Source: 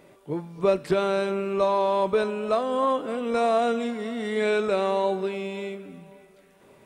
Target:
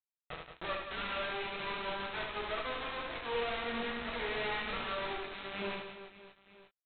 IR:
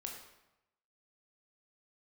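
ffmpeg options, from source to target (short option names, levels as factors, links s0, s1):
-filter_complex "[0:a]aeval=exprs='if(lt(val(0),0),0.251*val(0),val(0))':c=same,lowpass=1700,lowshelf=f=330:g=-7,aecho=1:1:5.9:0.34,adynamicequalizer=threshold=0.0112:dfrequency=670:dqfactor=1.2:tfrequency=670:tqfactor=1.2:attack=5:release=100:ratio=0.375:range=2:mode=cutabove:tftype=bell,acrossover=split=130|1300[s0][s1][s2];[s0]acompressor=threshold=0.00398:ratio=16[s3];[s1]aeval=exprs='(tanh(100*val(0)+0.5)-tanh(0.5))/100':c=same[s4];[s3][s4][s2]amix=inputs=3:normalize=0,aphaser=in_gain=1:out_gain=1:delay=4.6:decay=0.71:speed=0.53:type=triangular,aresample=8000,acrusher=bits=3:dc=4:mix=0:aa=0.000001,aresample=44100,acontrast=70,aecho=1:1:70|175|332.5|568.8|923.1:0.631|0.398|0.251|0.158|0.1[s5];[1:a]atrim=start_sample=2205,atrim=end_sample=3087,asetrate=79380,aresample=44100[s6];[s5][s6]afir=irnorm=-1:irlink=0"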